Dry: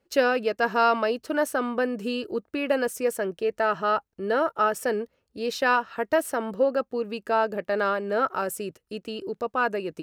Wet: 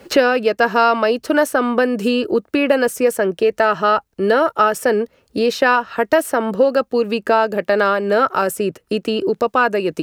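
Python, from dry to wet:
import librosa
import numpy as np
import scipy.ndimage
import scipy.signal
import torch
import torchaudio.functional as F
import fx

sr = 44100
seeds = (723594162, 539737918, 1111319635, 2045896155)

y = fx.band_squash(x, sr, depth_pct=70)
y = y * librosa.db_to_amplitude(8.5)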